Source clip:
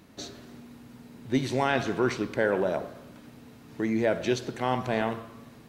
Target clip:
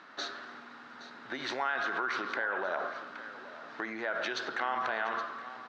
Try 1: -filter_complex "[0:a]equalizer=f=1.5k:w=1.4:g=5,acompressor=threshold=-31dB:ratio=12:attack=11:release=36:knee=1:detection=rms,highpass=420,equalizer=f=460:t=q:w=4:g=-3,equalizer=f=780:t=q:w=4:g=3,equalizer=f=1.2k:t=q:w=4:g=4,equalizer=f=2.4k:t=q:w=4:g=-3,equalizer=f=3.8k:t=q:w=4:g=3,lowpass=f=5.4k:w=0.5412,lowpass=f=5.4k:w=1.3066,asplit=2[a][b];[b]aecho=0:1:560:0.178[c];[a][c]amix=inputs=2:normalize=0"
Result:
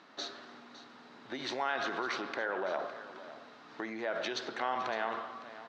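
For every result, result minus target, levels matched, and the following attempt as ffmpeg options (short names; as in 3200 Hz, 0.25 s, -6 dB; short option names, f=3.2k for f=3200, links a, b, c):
echo 0.26 s early; 2000 Hz band -3.0 dB
-filter_complex "[0:a]equalizer=f=1.5k:w=1.4:g=5,acompressor=threshold=-31dB:ratio=12:attack=11:release=36:knee=1:detection=rms,highpass=420,equalizer=f=460:t=q:w=4:g=-3,equalizer=f=780:t=q:w=4:g=3,equalizer=f=1.2k:t=q:w=4:g=4,equalizer=f=2.4k:t=q:w=4:g=-3,equalizer=f=3.8k:t=q:w=4:g=3,lowpass=f=5.4k:w=0.5412,lowpass=f=5.4k:w=1.3066,asplit=2[a][b];[b]aecho=0:1:820:0.178[c];[a][c]amix=inputs=2:normalize=0"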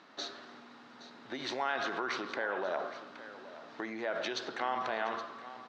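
2000 Hz band -3.0 dB
-filter_complex "[0:a]equalizer=f=1.5k:w=1.4:g=14.5,acompressor=threshold=-31dB:ratio=12:attack=11:release=36:knee=1:detection=rms,highpass=420,equalizer=f=460:t=q:w=4:g=-3,equalizer=f=780:t=q:w=4:g=3,equalizer=f=1.2k:t=q:w=4:g=4,equalizer=f=2.4k:t=q:w=4:g=-3,equalizer=f=3.8k:t=q:w=4:g=3,lowpass=f=5.4k:w=0.5412,lowpass=f=5.4k:w=1.3066,asplit=2[a][b];[b]aecho=0:1:820:0.178[c];[a][c]amix=inputs=2:normalize=0"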